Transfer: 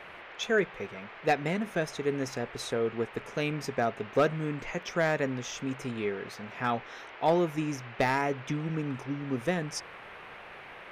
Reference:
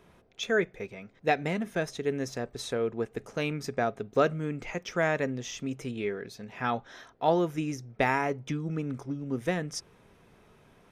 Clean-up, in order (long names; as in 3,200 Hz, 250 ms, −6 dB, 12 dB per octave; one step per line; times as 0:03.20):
clipped peaks rebuilt −16.5 dBFS
noise reduction from a noise print 12 dB